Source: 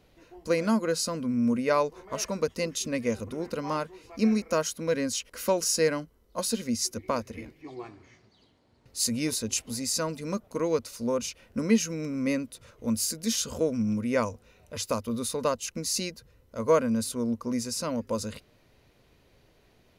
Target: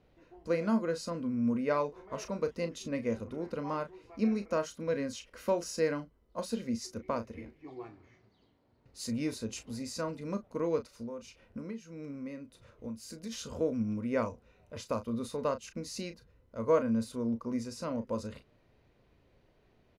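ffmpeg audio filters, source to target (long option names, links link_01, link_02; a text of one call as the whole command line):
ffmpeg -i in.wav -filter_complex "[0:a]lowpass=frequency=1900:poles=1,asplit=3[link_01][link_02][link_03];[link_01]afade=type=out:start_time=10.86:duration=0.02[link_04];[link_02]acompressor=threshold=-34dB:ratio=12,afade=type=in:start_time=10.86:duration=0.02,afade=type=out:start_time=13.31:duration=0.02[link_05];[link_03]afade=type=in:start_time=13.31:duration=0.02[link_06];[link_04][link_05][link_06]amix=inputs=3:normalize=0,asplit=2[link_07][link_08];[link_08]adelay=35,volume=-10dB[link_09];[link_07][link_09]amix=inputs=2:normalize=0,volume=-4.5dB" out.wav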